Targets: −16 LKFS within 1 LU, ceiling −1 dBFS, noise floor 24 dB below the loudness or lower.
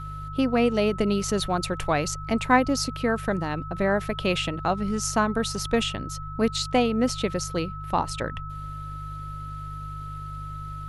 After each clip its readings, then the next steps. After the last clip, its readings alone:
mains hum 50 Hz; hum harmonics up to 150 Hz; level of the hum −35 dBFS; interfering tone 1,300 Hz; level of the tone −37 dBFS; integrated loudness −26.5 LKFS; sample peak −5.5 dBFS; target loudness −16.0 LKFS
→ hum removal 50 Hz, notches 3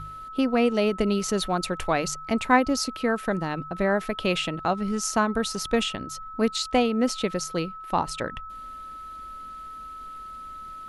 mains hum none found; interfering tone 1,300 Hz; level of the tone −37 dBFS
→ notch filter 1,300 Hz, Q 30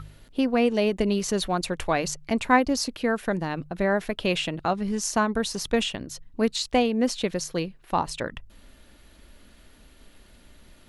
interfering tone none found; integrated loudness −26.0 LKFS; sample peak −6.0 dBFS; target loudness −16.0 LKFS
→ level +10 dB
brickwall limiter −1 dBFS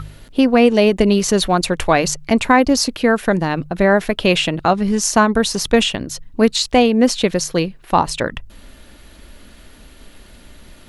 integrated loudness −16.0 LKFS; sample peak −1.0 dBFS; background noise floor −44 dBFS

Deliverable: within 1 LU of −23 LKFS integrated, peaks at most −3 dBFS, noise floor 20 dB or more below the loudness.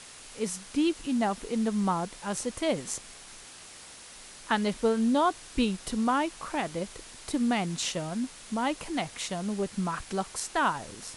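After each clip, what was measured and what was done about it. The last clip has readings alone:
background noise floor −48 dBFS; target noise floor −50 dBFS; integrated loudness −30.0 LKFS; sample peak −13.0 dBFS; target loudness −23.0 LKFS
→ noise reduction from a noise print 6 dB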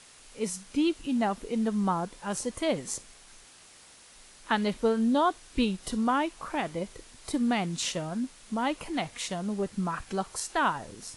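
background noise floor −54 dBFS; integrated loudness −30.0 LKFS; sample peak −13.0 dBFS; target loudness −23.0 LKFS
→ level +7 dB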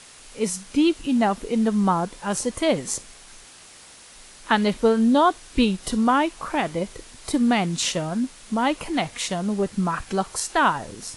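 integrated loudness −23.0 LKFS; sample peak −6.0 dBFS; background noise floor −47 dBFS

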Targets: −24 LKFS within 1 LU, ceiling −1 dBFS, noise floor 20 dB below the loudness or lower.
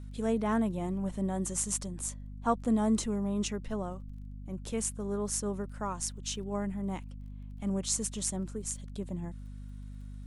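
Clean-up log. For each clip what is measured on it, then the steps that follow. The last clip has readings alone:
crackle rate 21 per second; mains hum 50 Hz; hum harmonics up to 250 Hz; level of the hum −41 dBFS; integrated loudness −33.5 LKFS; sample peak −15.5 dBFS; target loudness −24.0 LKFS
→ click removal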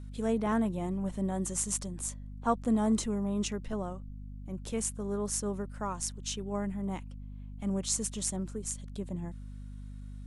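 crackle rate 0 per second; mains hum 50 Hz; hum harmonics up to 250 Hz; level of the hum −41 dBFS
→ mains-hum notches 50/100/150/200/250 Hz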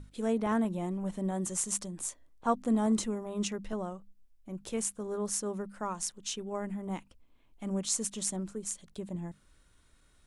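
mains hum none found; integrated loudness −34.0 LKFS; sample peak −15.0 dBFS; target loudness −24.0 LKFS
→ level +10 dB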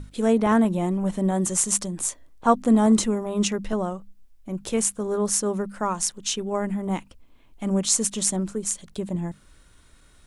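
integrated loudness −24.0 LKFS; sample peak −5.0 dBFS; background noise floor −55 dBFS

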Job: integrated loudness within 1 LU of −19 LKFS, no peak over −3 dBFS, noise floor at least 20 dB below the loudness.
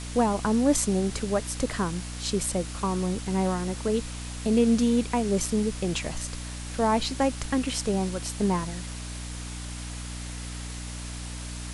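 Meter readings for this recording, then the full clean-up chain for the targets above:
mains hum 60 Hz; hum harmonics up to 300 Hz; level of the hum −35 dBFS; background noise floor −36 dBFS; target noise floor −48 dBFS; integrated loudness −28.0 LKFS; sample peak −9.5 dBFS; target loudness −19.0 LKFS
→ hum removal 60 Hz, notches 5
noise reduction from a noise print 12 dB
level +9 dB
brickwall limiter −3 dBFS

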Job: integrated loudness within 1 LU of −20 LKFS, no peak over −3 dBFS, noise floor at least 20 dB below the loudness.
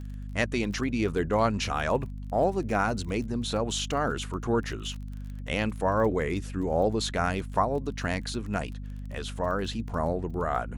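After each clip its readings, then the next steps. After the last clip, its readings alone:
crackle rate 24 per second; mains hum 50 Hz; hum harmonics up to 250 Hz; level of the hum −35 dBFS; integrated loudness −29.0 LKFS; sample peak −10.5 dBFS; target loudness −20.0 LKFS
→ click removal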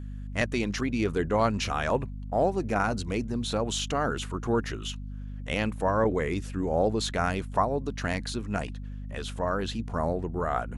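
crackle rate 0.093 per second; mains hum 50 Hz; hum harmonics up to 250 Hz; level of the hum −35 dBFS
→ mains-hum notches 50/100/150/200/250 Hz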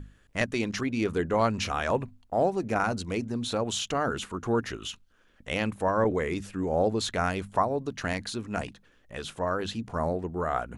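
mains hum none found; integrated loudness −29.5 LKFS; sample peak −10.5 dBFS; target loudness −20.0 LKFS
→ level +9.5 dB
brickwall limiter −3 dBFS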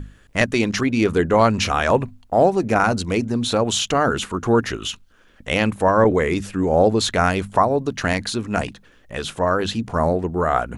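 integrated loudness −20.0 LKFS; sample peak −3.0 dBFS; background noise floor −53 dBFS

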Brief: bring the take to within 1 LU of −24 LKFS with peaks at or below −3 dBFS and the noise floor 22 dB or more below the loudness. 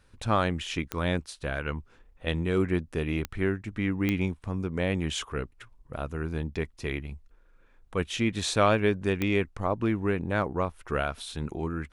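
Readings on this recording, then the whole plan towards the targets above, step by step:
number of clicks 4; integrated loudness −29.5 LKFS; sample peak −9.0 dBFS; target loudness −24.0 LKFS
→ click removal
level +5.5 dB

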